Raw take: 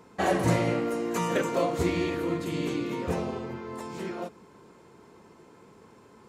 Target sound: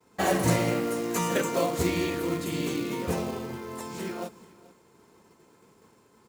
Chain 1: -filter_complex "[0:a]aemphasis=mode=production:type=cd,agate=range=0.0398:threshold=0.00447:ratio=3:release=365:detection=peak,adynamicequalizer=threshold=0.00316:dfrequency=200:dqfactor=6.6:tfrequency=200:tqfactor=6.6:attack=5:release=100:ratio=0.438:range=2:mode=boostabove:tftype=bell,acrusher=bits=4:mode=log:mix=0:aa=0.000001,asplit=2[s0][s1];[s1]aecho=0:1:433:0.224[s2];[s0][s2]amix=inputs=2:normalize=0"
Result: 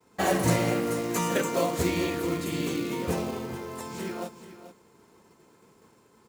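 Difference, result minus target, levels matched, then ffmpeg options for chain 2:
echo-to-direct +9 dB
-filter_complex "[0:a]aemphasis=mode=production:type=cd,agate=range=0.0398:threshold=0.00447:ratio=3:release=365:detection=peak,adynamicequalizer=threshold=0.00316:dfrequency=200:dqfactor=6.6:tfrequency=200:tqfactor=6.6:attack=5:release=100:ratio=0.438:range=2:mode=boostabove:tftype=bell,acrusher=bits=4:mode=log:mix=0:aa=0.000001,asplit=2[s0][s1];[s1]aecho=0:1:433:0.0794[s2];[s0][s2]amix=inputs=2:normalize=0"

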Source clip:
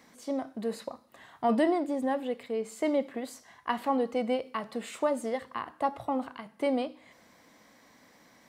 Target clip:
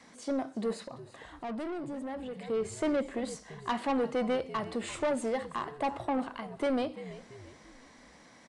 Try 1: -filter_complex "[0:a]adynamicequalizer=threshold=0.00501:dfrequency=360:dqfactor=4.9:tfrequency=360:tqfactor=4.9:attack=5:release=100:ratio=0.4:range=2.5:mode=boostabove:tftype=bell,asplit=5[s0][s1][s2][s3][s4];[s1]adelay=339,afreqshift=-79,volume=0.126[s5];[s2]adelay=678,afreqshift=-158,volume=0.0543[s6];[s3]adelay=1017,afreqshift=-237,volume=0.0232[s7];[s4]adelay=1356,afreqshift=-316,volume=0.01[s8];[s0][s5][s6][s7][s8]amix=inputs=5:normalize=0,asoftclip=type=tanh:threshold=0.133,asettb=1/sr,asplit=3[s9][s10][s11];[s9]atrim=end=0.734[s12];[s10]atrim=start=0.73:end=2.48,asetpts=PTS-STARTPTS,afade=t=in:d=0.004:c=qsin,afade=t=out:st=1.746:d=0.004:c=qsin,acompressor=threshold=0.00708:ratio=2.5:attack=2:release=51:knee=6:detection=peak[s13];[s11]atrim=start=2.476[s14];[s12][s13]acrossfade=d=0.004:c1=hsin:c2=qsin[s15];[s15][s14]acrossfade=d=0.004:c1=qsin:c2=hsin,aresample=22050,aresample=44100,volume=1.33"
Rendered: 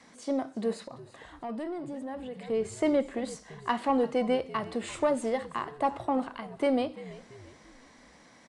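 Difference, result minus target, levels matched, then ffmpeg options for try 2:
saturation: distortion -11 dB
-filter_complex "[0:a]adynamicequalizer=threshold=0.00501:dfrequency=360:dqfactor=4.9:tfrequency=360:tqfactor=4.9:attack=5:release=100:ratio=0.4:range=2.5:mode=boostabove:tftype=bell,asplit=5[s0][s1][s2][s3][s4];[s1]adelay=339,afreqshift=-79,volume=0.126[s5];[s2]adelay=678,afreqshift=-158,volume=0.0543[s6];[s3]adelay=1017,afreqshift=-237,volume=0.0232[s7];[s4]adelay=1356,afreqshift=-316,volume=0.01[s8];[s0][s5][s6][s7][s8]amix=inputs=5:normalize=0,asoftclip=type=tanh:threshold=0.0447,asettb=1/sr,asplit=3[s9][s10][s11];[s9]atrim=end=0.734[s12];[s10]atrim=start=0.73:end=2.48,asetpts=PTS-STARTPTS,afade=t=in:d=0.004:c=qsin,afade=t=out:st=1.746:d=0.004:c=qsin,acompressor=threshold=0.00708:ratio=2.5:attack=2:release=51:knee=6:detection=peak[s13];[s11]atrim=start=2.476[s14];[s12][s13]acrossfade=d=0.004:c1=hsin:c2=qsin[s15];[s15][s14]acrossfade=d=0.004:c1=qsin:c2=hsin,aresample=22050,aresample=44100,volume=1.33"

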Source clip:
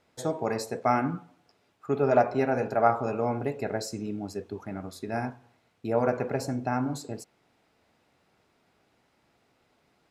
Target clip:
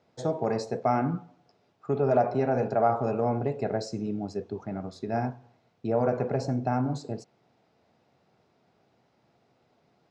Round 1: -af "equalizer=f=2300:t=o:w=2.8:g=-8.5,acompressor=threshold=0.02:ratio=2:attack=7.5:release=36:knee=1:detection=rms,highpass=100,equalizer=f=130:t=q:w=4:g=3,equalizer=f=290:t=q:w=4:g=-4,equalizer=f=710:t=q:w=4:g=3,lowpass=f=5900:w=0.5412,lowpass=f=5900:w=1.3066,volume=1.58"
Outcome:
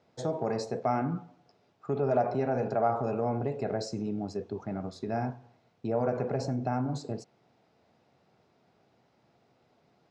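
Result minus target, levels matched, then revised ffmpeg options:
compression: peak gain reduction +3.5 dB
-af "equalizer=f=2300:t=o:w=2.8:g=-8.5,acompressor=threshold=0.0447:ratio=2:attack=7.5:release=36:knee=1:detection=rms,highpass=100,equalizer=f=130:t=q:w=4:g=3,equalizer=f=290:t=q:w=4:g=-4,equalizer=f=710:t=q:w=4:g=3,lowpass=f=5900:w=0.5412,lowpass=f=5900:w=1.3066,volume=1.58"

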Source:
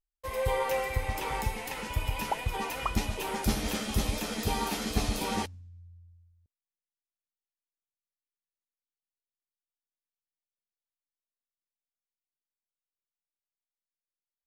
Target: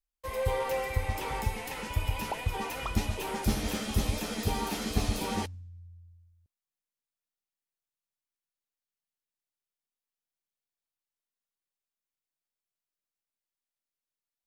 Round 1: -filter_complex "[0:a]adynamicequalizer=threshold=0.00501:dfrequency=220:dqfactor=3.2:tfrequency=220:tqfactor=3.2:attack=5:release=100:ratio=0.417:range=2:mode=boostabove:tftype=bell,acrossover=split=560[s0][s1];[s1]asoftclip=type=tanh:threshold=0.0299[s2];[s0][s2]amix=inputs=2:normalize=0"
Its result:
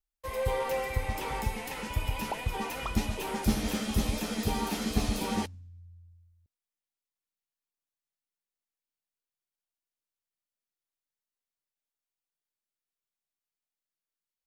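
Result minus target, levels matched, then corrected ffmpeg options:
250 Hz band +2.5 dB
-filter_complex "[0:a]adynamicequalizer=threshold=0.00501:dfrequency=94:dqfactor=3.2:tfrequency=94:tqfactor=3.2:attack=5:release=100:ratio=0.417:range=2:mode=boostabove:tftype=bell,acrossover=split=560[s0][s1];[s1]asoftclip=type=tanh:threshold=0.0299[s2];[s0][s2]amix=inputs=2:normalize=0"

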